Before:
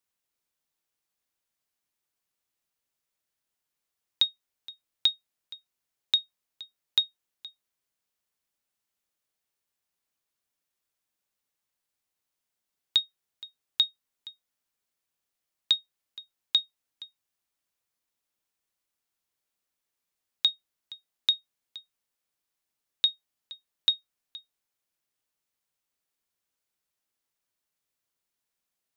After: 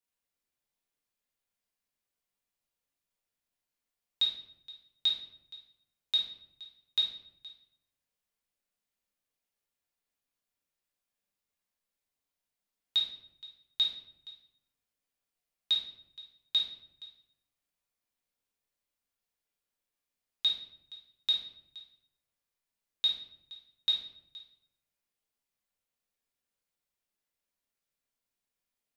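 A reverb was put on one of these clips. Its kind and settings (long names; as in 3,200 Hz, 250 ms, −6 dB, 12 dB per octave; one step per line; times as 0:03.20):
rectangular room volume 170 cubic metres, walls mixed, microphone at 1.7 metres
level −9.5 dB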